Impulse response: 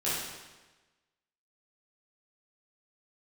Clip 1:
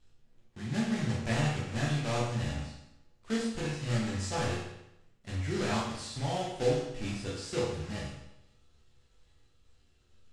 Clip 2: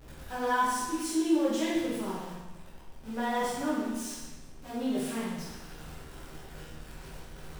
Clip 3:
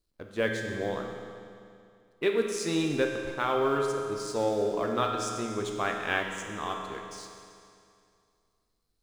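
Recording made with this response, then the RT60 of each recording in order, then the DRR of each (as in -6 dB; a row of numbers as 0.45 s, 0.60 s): 2; 0.85 s, 1.2 s, 2.4 s; -6.5 dB, -10.5 dB, 1.5 dB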